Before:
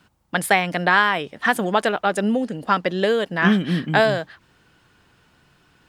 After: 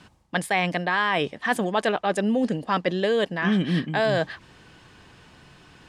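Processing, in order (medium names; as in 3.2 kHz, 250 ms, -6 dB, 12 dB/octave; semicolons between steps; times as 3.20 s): low-pass 9.3 kHz 12 dB/octave; band-stop 1.4 kHz, Q 8.9; reverse; compression 6:1, threshold -28 dBFS, peak gain reduction 15.5 dB; reverse; trim +7.5 dB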